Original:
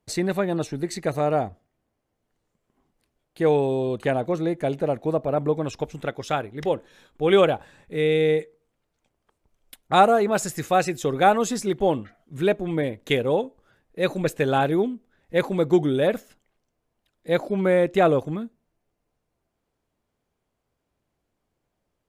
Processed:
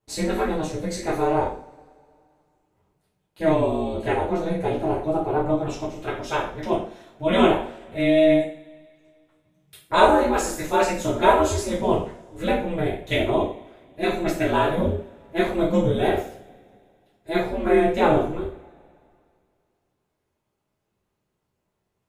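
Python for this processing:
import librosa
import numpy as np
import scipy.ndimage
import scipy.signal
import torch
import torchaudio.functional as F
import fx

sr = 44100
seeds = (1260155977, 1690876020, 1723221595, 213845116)

y = x * np.sin(2.0 * np.pi * 160.0 * np.arange(len(x)) / sr)
y = fx.rev_double_slope(y, sr, seeds[0], early_s=0.45, late_s=2.4, knee_db=-26, drr_db=-9.0)
y = y * 10.0 ** (-5.5 / 20.0)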